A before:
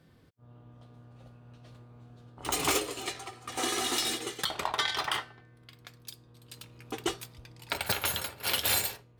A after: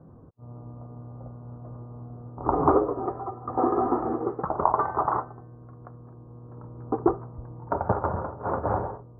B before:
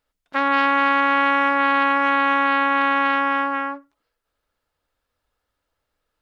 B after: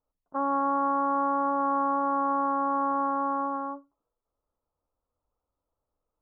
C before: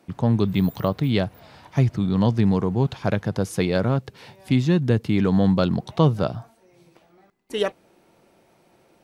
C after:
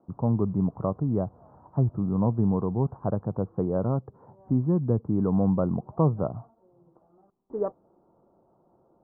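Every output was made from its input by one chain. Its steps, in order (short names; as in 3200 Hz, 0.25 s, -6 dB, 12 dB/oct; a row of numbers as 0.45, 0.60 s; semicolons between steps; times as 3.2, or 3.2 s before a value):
steep low-pass 1200 Hz 48 dB/oct; match loudness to -27 LUFS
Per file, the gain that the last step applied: +11.5, -5.0, -4.5 dB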